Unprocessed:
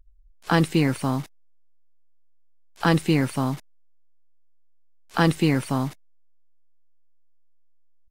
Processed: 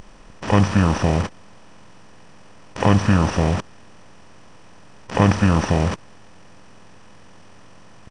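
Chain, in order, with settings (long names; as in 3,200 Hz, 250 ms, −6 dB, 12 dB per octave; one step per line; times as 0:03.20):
compressor on every frequency bin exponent 0.4
pitch shifter −8.5 semitones
level +2 dB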